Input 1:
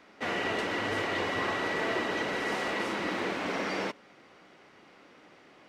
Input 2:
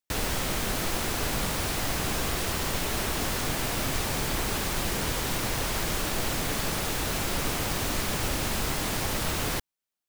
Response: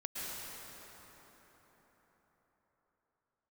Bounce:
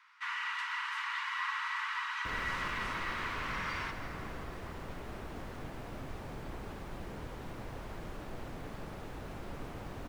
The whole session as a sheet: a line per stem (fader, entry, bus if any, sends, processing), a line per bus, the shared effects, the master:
-2.0 dB, 0.00 s, send -6.5 dB, steep high-pass 940 Hz 96 dB/octave
-12.0 dB, 2.15 s, no send, treble shelf 3.2 kHz -11.5 dB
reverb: on, RT60 4.8 s, pre-delay 103 ms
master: treble shelf 2.5 kHz -9 dB

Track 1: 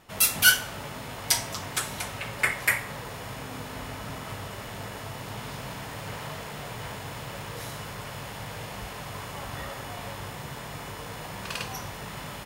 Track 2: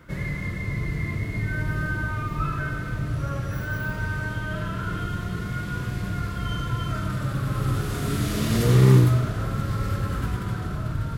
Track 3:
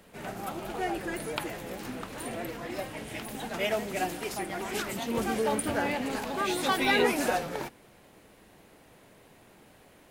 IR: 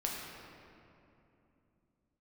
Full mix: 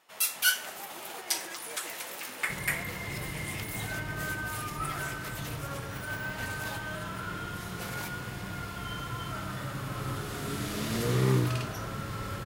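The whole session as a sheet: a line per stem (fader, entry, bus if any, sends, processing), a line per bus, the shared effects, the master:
-6.5 dB, 0.00 s, no send, high-pass 630 Hz 6 dB/octave
-5.0 dB, 2.40 s, no send, none
-11.0 dB, 0.40 s, send -9.5 dB, tilt EQ +3.5 dB/octave; compressor with a negative ratio -35 dBFS, ratio -0.5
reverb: on, RT60 2.9 s, pre-delay 6 ms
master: bass shelf 160 Hz -11 dB

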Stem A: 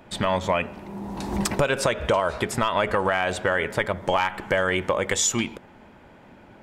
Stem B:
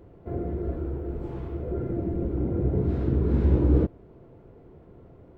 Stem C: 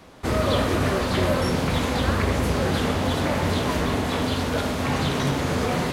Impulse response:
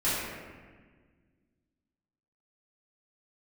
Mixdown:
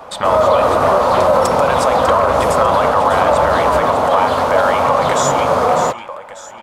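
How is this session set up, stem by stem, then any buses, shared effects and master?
+2.0 dB, 0.00 s, no send, echo send -9 dB, tilt shelf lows -6 dB, about 910 Hz; compression 2:1, threshold -29 dBFS, peak gain reduction 9 dB
-8.5 dB, 0.00 s, no send, no echo send, none
+1.0 dB, 0.00 s, no send, no echo send, bass shelf 73 Hz -9 dB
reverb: none
echo: feedback delay 597 ms, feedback 46%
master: high-order bell 810 Hz +15 dB; peak limiter -3.5 dBFS, peak gain reduction 5.5 dB

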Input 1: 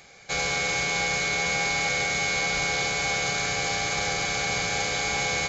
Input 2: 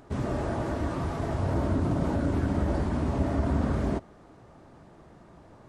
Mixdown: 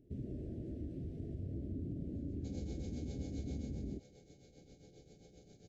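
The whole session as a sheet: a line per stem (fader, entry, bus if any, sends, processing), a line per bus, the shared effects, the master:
3.57 s -12.5 dB -> 3.91 s -22 dB, 2.15 s, no send, resonant high shelf 1.5 kHz -13.5 dB, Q 3; tremolo triangle 7.5 Hz, depth 80%
-18.5 dB, 0.00 s, no send, tilt shelf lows +9.5 dB, about 1.3 kHz; compression 3:1, threshold -20 dBFS, peak gain reduction 7 dB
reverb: none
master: Chebyshev band-stop 380–2900 Hz, order 2

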